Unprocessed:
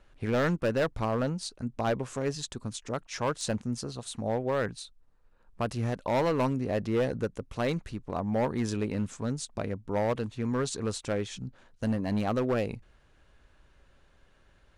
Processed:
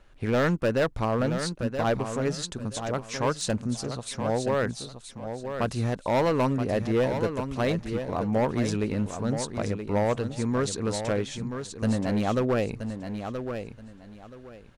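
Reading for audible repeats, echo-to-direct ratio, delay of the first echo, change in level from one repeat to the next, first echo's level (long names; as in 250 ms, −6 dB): 3, −8.0 dB, 976 ms, −13.0 dB, −8.0 dB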